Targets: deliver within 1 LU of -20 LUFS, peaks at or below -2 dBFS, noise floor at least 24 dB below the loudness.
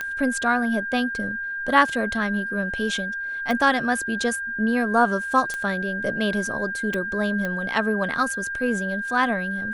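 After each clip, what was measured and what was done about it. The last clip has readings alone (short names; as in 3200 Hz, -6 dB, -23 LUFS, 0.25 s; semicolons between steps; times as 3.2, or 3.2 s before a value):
clicks 5; steady tone 1600 Hz; tone level -27 dBFS; loudness -23.5 LUFS; peak -4.0 dBFS; loudness target -20.0 LUFS
-> de-click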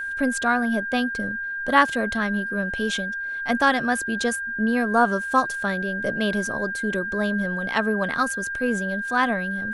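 clicks 0; steady tone 1600 Hz; tone level -27 dBFS
-> notch 1600 Hz, Q 30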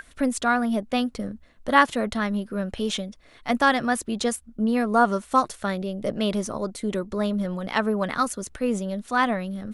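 steady tone none; loudness -25.0 LUFS; peak -3.5 dBFS; loudness target -20.0 LUFS
-> gain +5 dB; limiter -2 dBFS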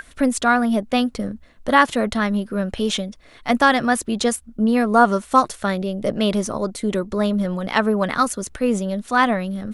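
loudness -20.0 LUFS; peak -2.0 dBFS; noise floor -48 dBFS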